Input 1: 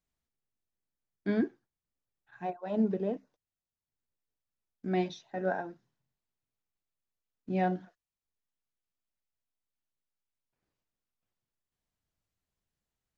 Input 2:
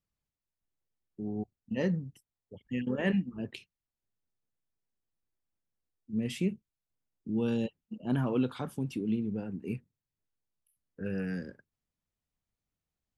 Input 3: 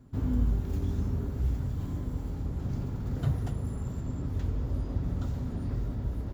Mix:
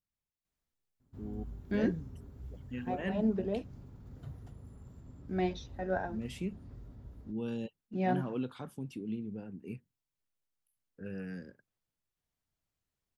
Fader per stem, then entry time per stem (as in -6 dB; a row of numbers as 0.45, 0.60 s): -2.0, -7.0, -17.5 dB; 0.45, 0.00, 1.00 s